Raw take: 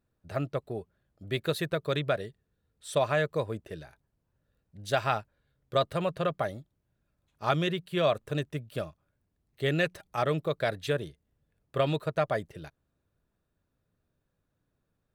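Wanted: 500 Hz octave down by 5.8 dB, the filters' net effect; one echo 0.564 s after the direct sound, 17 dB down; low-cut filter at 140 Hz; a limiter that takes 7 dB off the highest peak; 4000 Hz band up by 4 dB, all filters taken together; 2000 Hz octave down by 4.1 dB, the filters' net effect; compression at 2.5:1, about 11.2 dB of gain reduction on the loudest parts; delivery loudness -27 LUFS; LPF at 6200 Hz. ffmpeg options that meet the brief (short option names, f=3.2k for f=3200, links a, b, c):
-af "highpass=140,lowpass=6.2k,equalizer=f=500:t=o:g=-7,equalizer=f=2k:t=o:g=-7,equalizer=f=4k:t=o:g=7.5,acompressor=threshold=-42dB:ratio=2.5,alimiter=level_in=6dB:limit=-24dB:level=0:latency=1,volume=-6dB,aecho=1:1:564:0.141,volume=18dB"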